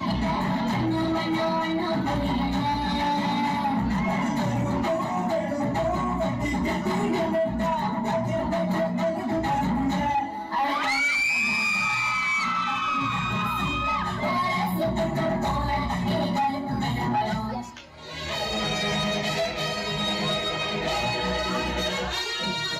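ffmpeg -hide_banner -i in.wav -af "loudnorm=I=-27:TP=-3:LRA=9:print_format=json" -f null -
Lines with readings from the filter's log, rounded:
"input_i" : "-25.4",
"input_tp" : "-18.9",
"input_lra" : "3.7",
"input_thresh" : "-35.4",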